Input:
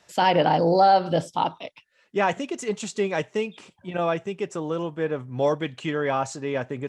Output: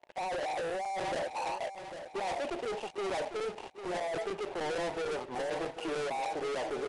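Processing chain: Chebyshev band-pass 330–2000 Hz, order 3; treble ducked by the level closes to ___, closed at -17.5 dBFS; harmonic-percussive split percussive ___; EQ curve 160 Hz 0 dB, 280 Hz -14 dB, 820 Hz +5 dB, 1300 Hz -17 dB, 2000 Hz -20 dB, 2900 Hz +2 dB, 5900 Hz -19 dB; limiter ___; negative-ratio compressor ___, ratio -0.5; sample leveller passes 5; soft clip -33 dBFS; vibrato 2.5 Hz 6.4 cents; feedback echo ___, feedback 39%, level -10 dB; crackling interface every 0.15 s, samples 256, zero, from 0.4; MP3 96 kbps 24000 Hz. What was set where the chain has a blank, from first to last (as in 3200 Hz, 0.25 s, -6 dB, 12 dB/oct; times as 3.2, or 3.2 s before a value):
580 Hz, -11 dB, -19.5 dBFS, -33 dBFS, 0.799 s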